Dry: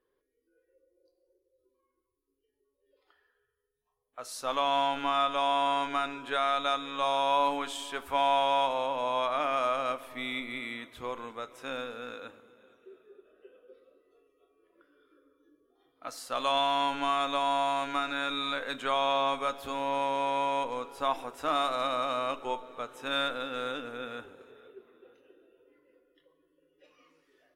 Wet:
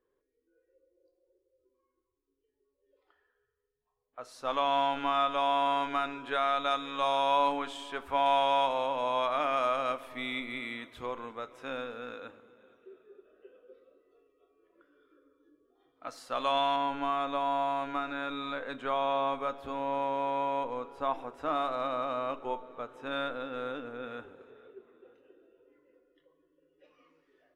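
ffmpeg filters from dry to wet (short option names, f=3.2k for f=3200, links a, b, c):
-af "asetnsamples=n=441:p=0,asendcmd='4.45 lowpass f 3300;6.71 lowpass f 6000;7.52 lowpass f 2500;8.26 lowpass f 6000;11.06 lowpass f 2800;16.76 lowpass f 1200;24.04 lowpass f 1900',lowpass=f=1.6k:p=1"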